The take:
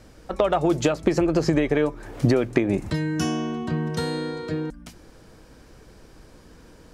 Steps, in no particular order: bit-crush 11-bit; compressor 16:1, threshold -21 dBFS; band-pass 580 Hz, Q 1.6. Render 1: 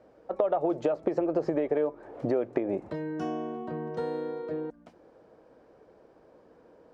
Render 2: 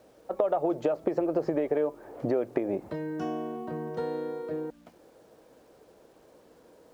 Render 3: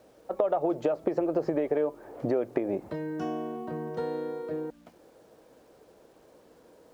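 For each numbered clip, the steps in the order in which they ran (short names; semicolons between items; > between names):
bit-crush > band-pass > compressor; band-pass > compressor > bit-crush; band-pass > bit-crush > compressor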